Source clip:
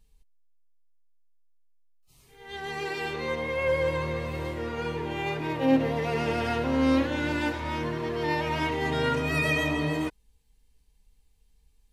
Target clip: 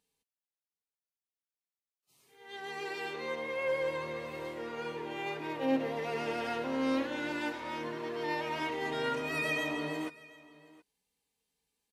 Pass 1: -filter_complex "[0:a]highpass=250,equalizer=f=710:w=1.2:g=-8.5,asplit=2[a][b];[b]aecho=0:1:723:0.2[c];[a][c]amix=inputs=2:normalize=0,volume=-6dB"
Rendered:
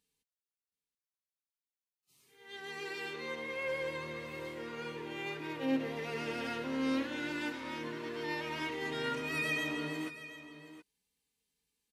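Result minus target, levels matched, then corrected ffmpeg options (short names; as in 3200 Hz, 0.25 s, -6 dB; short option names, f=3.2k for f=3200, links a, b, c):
echo-to-direct +7.5 dB; 1000 Hz band -3.0 dB
-filter_complex "[0:a]highpass=250,asplit=2[a][b];[b]aecho=0:1:723:0.0841[c];[a][c]amix=inputs=2:normalize=0,volume=-6dB"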